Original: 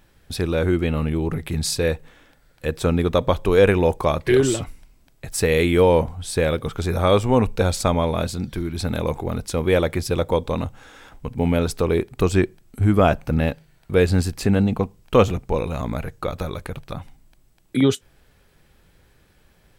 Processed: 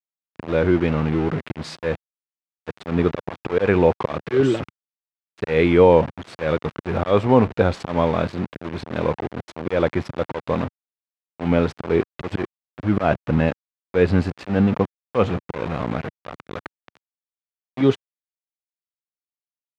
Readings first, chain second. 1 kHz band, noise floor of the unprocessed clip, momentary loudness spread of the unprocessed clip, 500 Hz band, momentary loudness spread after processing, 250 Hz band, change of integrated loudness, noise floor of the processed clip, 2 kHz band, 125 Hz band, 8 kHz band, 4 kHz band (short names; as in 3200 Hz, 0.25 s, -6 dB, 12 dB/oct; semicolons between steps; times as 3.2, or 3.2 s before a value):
0.0 dB, -58 dBFS, 12 LU, -0.5 dB, 15 LU, +0.5 dB, -0.5 dB, under -85 dBFS, -1.0 dB, -2.5 dB, under -15 dB, -6.5 dB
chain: auto swell 0.149 s; sample gate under -27.5 dBFS; BPF 110–2400 Hz; gain +3 dB